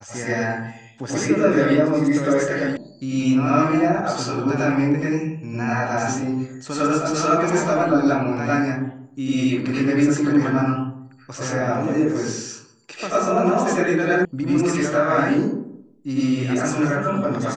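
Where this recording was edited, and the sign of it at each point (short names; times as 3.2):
2.77 sound cut off
14.25 sound cut off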